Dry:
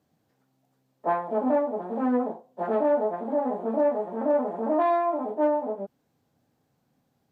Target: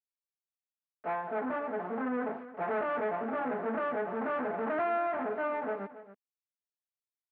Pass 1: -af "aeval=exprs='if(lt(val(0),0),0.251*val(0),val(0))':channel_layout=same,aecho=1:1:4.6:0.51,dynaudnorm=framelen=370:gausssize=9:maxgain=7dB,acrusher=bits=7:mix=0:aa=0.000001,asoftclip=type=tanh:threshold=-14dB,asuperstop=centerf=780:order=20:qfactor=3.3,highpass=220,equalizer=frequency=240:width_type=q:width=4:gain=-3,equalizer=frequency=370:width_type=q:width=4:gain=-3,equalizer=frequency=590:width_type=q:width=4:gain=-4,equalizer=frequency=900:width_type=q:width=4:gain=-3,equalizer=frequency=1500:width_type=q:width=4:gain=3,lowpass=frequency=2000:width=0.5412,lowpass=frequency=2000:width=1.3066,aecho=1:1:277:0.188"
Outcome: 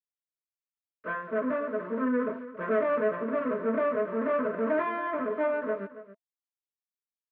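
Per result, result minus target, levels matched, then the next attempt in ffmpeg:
soft clipping: distortion −9 dB; 1,000 Hz band −4.5 dB
-af "aeval=exprs='if(lt(val(0),0),0.251*val(0),val(0))':channel_layout=same,aecho=1:1:4.6:0.51,dynaudnorm=framelen=370:gausssize=9:maxgain=7dB,acrusher=bits=7:mix=0:aa=0.000001,asoftclip=type=tanh:threshold=-25.5dB,asuperstop=centerf=780:order=20:qfactor=3.3,highpass=220,equalizer=frequency=240:width_type=q:width=4:gain=-3,equalizer=frequency=370:width_type=q:width=4:gain=-3,equalizer=frequency=590:width_type=q:width=4:gain=-4,equalizer=frequency=900:width_type=q:width=4:gain=-3,equalizer=frequency=1500:width_type=q:width=4:gain=3,lowpass=frequency=2000:width=0.5412,lowpass=frequency=2000:width=1.3066,aecho=1:1:277:0.188"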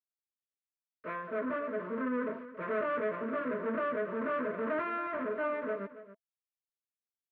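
1,000 Hz band −2.5 dB
-af "aeval=exprs='if(lt(val(0),0),0.251*val(0),val(0))':channel_layout=same,aecho=1:1:4.6:0.51,dynaudnorm=framelen=370:gausssize=9:maxgain=7dB,acrusher=bits=7:mix=0:aa=0.000001,asoftclip=type=tanh:threshold=-25.5dB,highpass=220,equalizer=frequency=240:width_type=q:width=4:gain=-3,equalizer=frequency=370:width_type=q:width=4:gain=-3,equalizer=frequency=590:width_type=q:width=4:gain=-4,equalizer=frequency=900:width_type=q:width=4:gain=-3,equalizer=frequency=1500:width_type=q:width=4:gain=3,lowpass=frequency=2000:width=0.5412,lowpass=frequency=2000:width=1.3066,aecho=1:1:277:0.188"

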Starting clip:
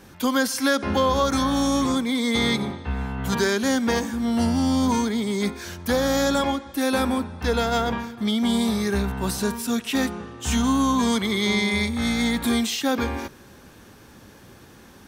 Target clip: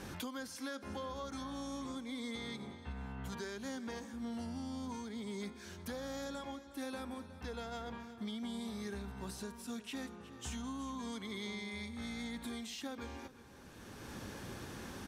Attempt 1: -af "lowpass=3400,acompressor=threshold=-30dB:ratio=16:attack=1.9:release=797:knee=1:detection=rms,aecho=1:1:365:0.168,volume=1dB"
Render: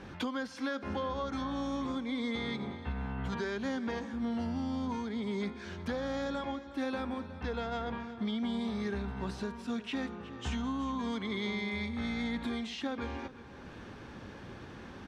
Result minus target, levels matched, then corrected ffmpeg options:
8,000 Hz band −13.0 dB; downward compressor: peak gain reduction −7.5 dB
-af "lowpass=12000,acompressor=threshold=-38dB:ratio=16:attack=1.9:release=797:knee=1:detection=rms,aecho=1:1:365:0.168,volume=1dB"

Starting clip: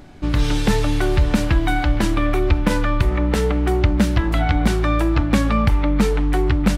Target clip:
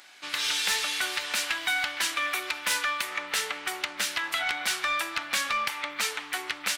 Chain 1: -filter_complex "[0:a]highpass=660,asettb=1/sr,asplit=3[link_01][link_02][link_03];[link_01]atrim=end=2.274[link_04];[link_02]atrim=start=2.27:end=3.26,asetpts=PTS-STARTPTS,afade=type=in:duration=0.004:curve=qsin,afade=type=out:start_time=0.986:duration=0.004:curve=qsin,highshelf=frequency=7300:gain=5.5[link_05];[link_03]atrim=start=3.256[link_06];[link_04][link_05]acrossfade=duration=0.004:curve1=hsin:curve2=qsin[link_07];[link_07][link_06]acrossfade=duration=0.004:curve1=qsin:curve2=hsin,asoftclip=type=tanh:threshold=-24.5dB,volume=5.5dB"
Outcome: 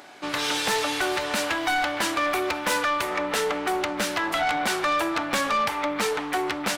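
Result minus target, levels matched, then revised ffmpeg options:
500 Hz band +12.0 dB
-filter_complex "[0:a]highpass=1900,asettb=1/sr,asplit=3[link_01][link_02][link_03];[link_01]atrim=end=2.274[link_04];[link_02]atrim=start=2.27:end=3.26,asetpts=PTS-STARTPTS,afade=type=in:duration=0.004:curve=qsin,afade=type=out:start_time=0.986:duration=0.004:curve=qsin,highshelf=frequency=7300:gain=5.5[link_05];[link_03]atrim=start=3.256[link_06];[link_04][link_05]acrossfade=duration=0.004:curve1=hsin:curve2=qsin[link_07];[link_07][link_06]acrossfade=duration=0.004:curve1=qsin:curve2=hsin,asoftclip=type=tanh:threshold=-24.5dB,volume=5.5dB"

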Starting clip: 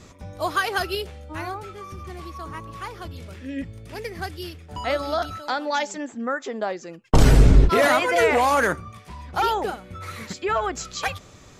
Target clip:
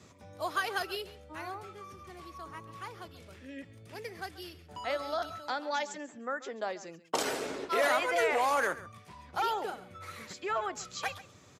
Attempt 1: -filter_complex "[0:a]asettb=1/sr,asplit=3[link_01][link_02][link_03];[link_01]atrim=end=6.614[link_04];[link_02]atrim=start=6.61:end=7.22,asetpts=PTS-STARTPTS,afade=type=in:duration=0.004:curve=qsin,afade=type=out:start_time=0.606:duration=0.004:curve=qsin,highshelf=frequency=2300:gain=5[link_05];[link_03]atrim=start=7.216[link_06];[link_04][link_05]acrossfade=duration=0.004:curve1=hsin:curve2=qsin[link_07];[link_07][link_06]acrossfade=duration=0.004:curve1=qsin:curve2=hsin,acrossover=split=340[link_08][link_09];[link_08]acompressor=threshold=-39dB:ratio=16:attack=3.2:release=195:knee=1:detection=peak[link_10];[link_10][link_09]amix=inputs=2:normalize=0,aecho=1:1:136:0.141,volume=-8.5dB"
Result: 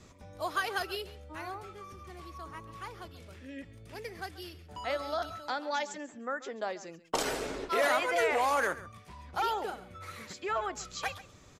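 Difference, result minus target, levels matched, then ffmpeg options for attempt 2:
125 Hz band +2.5 dB
-filter_complex "[0:a]asettb=1/sr,asplit=3[link_01][link_02][link_03];[link_01]atrim=end=6.614[link_04];[link_02]atrim=start=6.61:end=7.22,asetpts=PTS-STARTPTS,afade=type=in:duration=0.004:curve=qsin,afade=type=out:start_time=0.606:duration=0.004:curve=qsin,highshelf=frequency=2300:gain=5[link_05];[link_03]atrim=start=7.216[link_06];[link_04][link_05]acrossfade=duration=0.004:curve1=hsin:curve2=qsin[link_07];[link_07][link_06]acrossfade=duration=0.004:curve1=qsin:curve2=hsin,acrossover=split=340[link_08][link_09];[link_08]acompressor=threshold=-39dB:ratio=16:attack=3.2:release=195:knee=1:detection=peak,highpass=frequency=86:width=0.5412,highpass=frequency=86:width=1.3066[link_10];[link_10][link_09]amix=inputs=2:normalize=0,aecho=1:1:136:0.141,volume=-8.5dB"

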